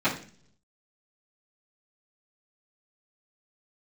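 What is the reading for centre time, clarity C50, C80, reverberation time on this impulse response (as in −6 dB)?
20 ms, 9.0 dB, 13.5 dB, 0.45 s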